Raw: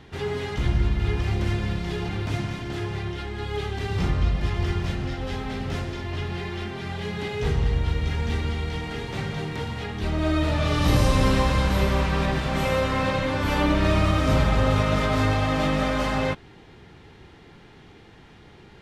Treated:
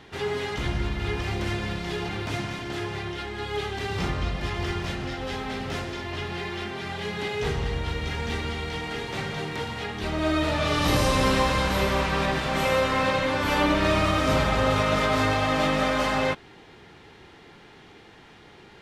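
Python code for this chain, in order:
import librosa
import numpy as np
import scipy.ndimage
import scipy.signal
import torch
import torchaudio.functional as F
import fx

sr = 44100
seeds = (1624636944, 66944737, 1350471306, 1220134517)

y = fx.low_shelf(x, sr, hz=210.0, db=-10.5)
y = F.gain(torch.from_numpy(y), 2.5).numpy()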